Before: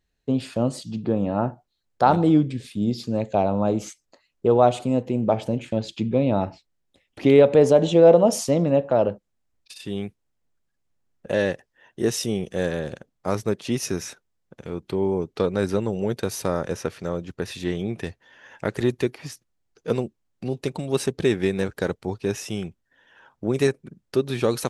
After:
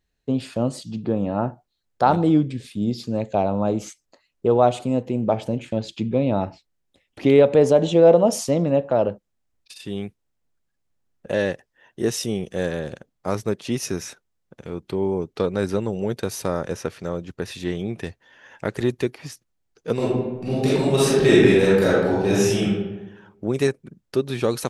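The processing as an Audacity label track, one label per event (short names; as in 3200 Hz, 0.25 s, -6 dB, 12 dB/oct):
19.950000	22.640000	reverb throw, RT60 1.1 s, DRR -9 dB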